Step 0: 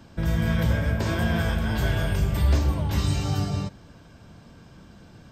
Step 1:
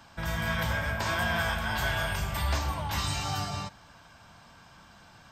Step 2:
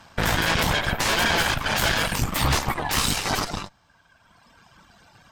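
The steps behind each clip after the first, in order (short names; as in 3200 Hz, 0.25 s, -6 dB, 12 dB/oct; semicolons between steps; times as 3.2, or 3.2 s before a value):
resonant low shelf 600 Hz -11 dB, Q 1.5; gain +1.5 dB
reverb removal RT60 2 s; added harmonics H 8 -6 dB, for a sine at -17 dBFS; gain +4 dB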